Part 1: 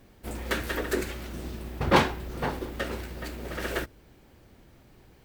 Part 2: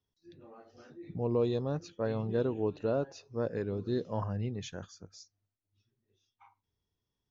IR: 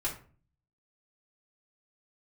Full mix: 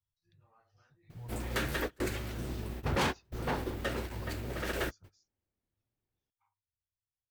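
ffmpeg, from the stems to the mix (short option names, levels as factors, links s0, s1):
-filter_complex "[0:a]asoftclip=type=hard:threshold=0.0596,adelay=1050,volume=0.794[s0];[1:a]firequalizer=gain_entry='entry(120,0);entry(250,-26);entry(920,-6);entry(3400,-9)':delay=0.05:min_phase=1,acompressor=threshold=0.00891:ratio=4,volume=0.75,afade=t=out:st=4.99:d=0.22:silence=0.316228,asplit=2[s1][s2];[s2]apad=whole_len=277812[s3];[s0][s3]sidechaingate=range=0.0224:threshold=0.00158:ratio=16:detection=peak[s4];[s4][s1]amix=inputs=2:normalize=0"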